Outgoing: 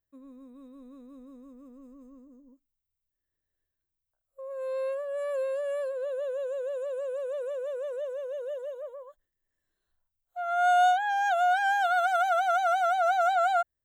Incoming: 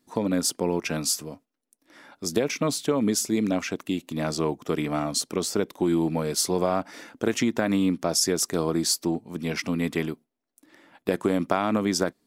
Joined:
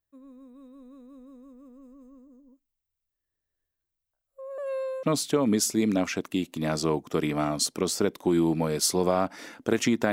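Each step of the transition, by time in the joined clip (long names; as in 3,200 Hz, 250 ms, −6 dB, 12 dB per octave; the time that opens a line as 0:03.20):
outgoing
0:04.58–0:05.03: reverse
0:05.03: continue with incoming from 0:02.58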